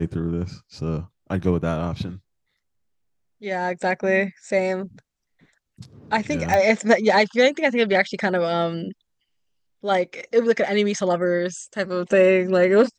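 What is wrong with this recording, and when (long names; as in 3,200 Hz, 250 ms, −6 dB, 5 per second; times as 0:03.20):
0:06.54: click −9 dBFS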